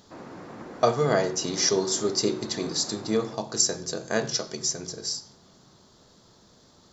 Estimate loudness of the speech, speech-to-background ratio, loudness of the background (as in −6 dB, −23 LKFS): −26.0 LKFS, 16.5 dB, −42.5 LKFS